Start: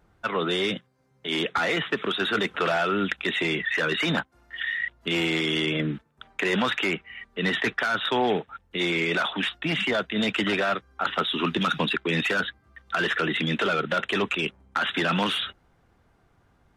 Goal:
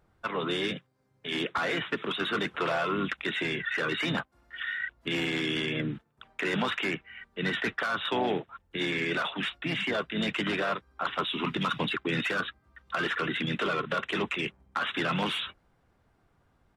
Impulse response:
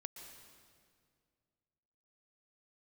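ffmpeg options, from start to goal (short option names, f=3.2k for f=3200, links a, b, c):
-filter_complex "[0:a]bandreject=f=6.4k:w=22,asplit=2[a][b];[b]asetrate=35002,aresample=44100,atempo=1.25992,volume=-7dB[c];[a][c]amix=inputs=2:normalize=0,volume=-5.5dB"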